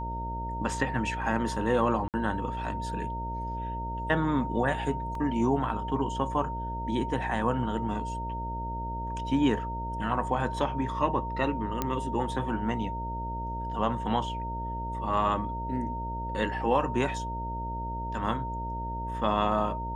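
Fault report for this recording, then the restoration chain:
buzz 60 Hz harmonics 11 -36 dBFS
tone 920 Hz -34 dBFS
2.08–2.14 gap 58 ms
5.15 gap 2.4 ms
11.82 pop -13 dBFS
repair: de-click; de-hum 60 Hz, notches 11; notch 920 Hz, Q 30; interpolate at 2.08, 58 ms; interpolate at 5.15, 2.4 ms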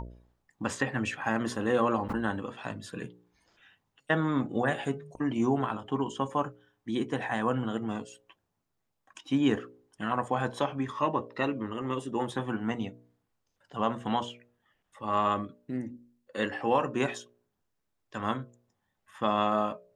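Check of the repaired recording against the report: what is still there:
none

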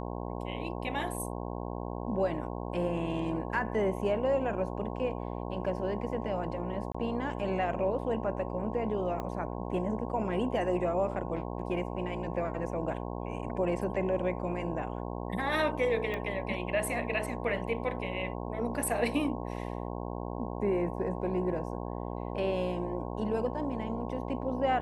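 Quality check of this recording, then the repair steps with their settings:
buzz 60 Hz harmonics 18 -37 dBFS
6.92–6.95 gap 25 ms
9.2 pop -23 dBFS
16.14 pop -23 dBFS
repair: de-click; de-hum 60 Hz, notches 18; interpolate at 6.92, 25 ms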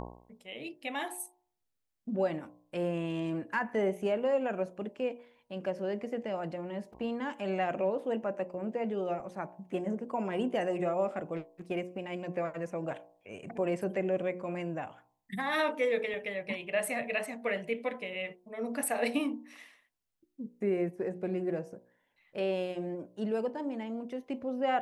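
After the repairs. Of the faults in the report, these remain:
9.2 pop
16.14 pop

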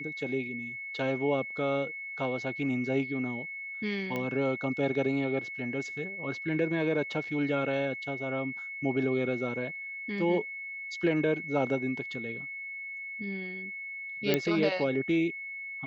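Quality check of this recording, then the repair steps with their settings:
tone 2200 Hz -37 dBFS
4.16 pop -20 dBFS
14.34 pop -11 dBFS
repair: de-click; notch 2200 Hz, Q 30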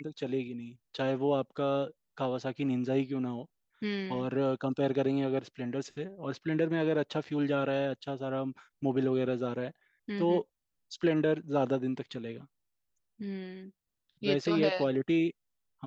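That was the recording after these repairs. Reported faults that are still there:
14.34 pop

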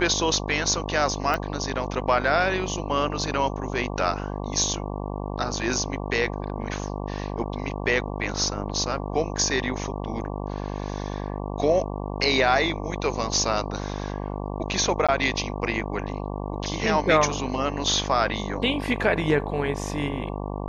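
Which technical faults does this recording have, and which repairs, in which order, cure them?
buzz 50 Hz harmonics 23 -31 dBFS
1.34 pop -13 dBFS
15.07–15.09 gap 16 ms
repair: de-click; de-hum 50 Hz, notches 23; interpolate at 15.07, 16 ms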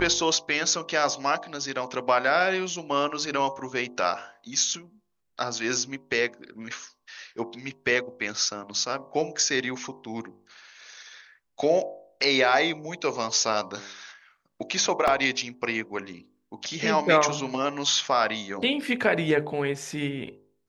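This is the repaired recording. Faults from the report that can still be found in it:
none

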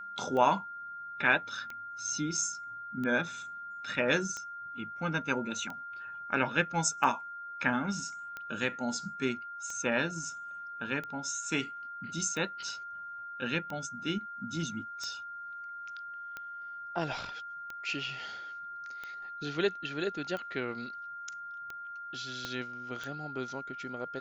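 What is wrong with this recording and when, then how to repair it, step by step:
tick 45 rpm -26 dBFS
tone 1400 Hz -40 dBFS
22.45 pop -21 dBFS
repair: de-click; notch 1400 Hz, Q 30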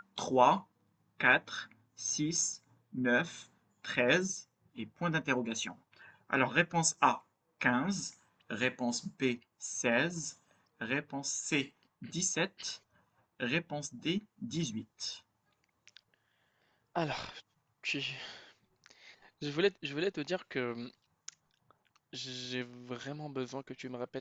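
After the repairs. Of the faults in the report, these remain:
22.45 pop

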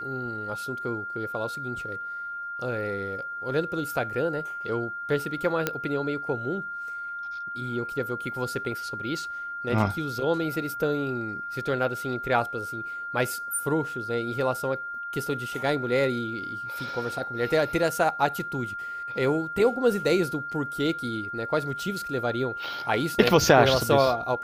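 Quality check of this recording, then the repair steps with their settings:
tone 1400 Hz -32 dBFS
5.67 pop -9 dBFS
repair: de-click; notch 1400 Hz, Q 30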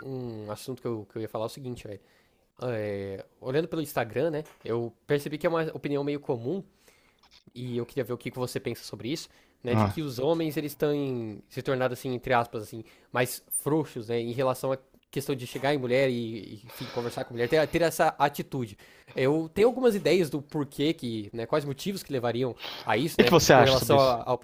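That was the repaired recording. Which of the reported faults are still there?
none

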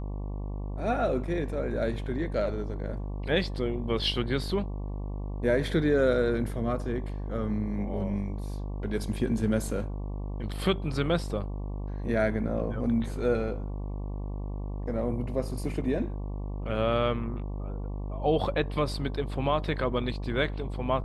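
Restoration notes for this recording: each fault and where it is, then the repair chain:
buzz 50 Hz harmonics 23 -34 dBFS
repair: de-hum 50 Hz, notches 23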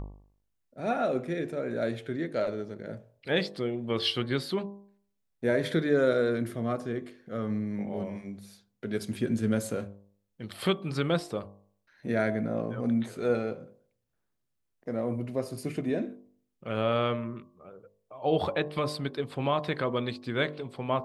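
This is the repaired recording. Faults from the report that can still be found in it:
none

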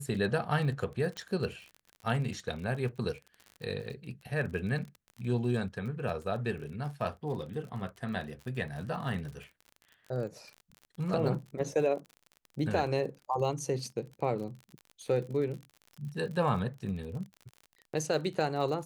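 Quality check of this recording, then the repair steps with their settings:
crackle 46/s -40 dBFS
1.17 pop -24 dBFS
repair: de-click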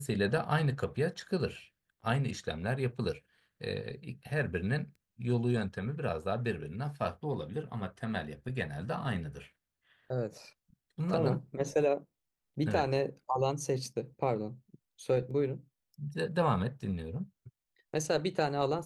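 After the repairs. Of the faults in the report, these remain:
none

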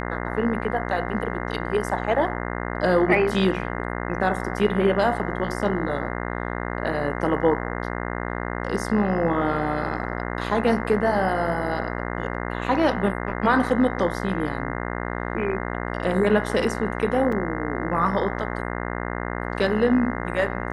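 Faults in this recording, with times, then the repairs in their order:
buzz 60 Hz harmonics 35 -29 dBFS
17.32 gap 4.1 ms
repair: de-hum 60 Hz, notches 35; interpolate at 17.32, 4.1 ms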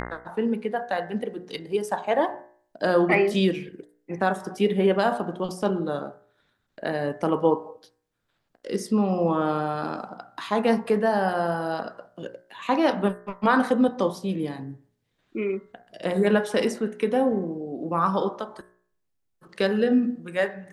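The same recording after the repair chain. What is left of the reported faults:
none

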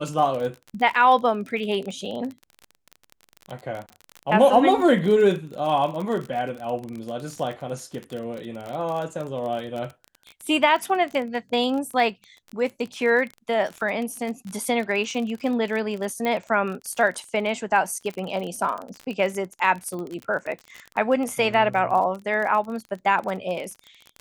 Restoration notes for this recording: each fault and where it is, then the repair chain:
crackle 33/s -29 dBFS
16.25 pop -14 dBFS
19.99 pop -24 dBFS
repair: de-click

